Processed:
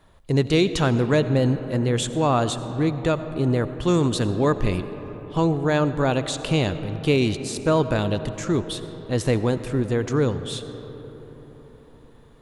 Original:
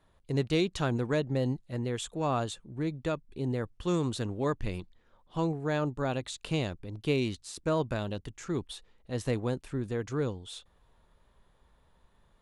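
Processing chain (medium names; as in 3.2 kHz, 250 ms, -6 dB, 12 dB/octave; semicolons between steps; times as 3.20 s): in parallel at -3 dB: peak limiter -24.5 dBFS, peak gain reduction 9 dB; on the sum: reverberation RT60 4.5 s, pre-delay 45 ms, DRR 11 dB; trim +6 dB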